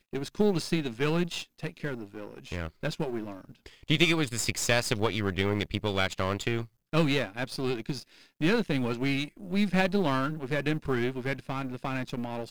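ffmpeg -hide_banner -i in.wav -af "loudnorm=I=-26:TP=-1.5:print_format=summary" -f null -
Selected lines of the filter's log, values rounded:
Input Integrated:    -29.7 LUFS
Input True Peak:      -5.1 dBTP
Input LRA:             3.5 LU
Input Threshold:     -39.9 LUFS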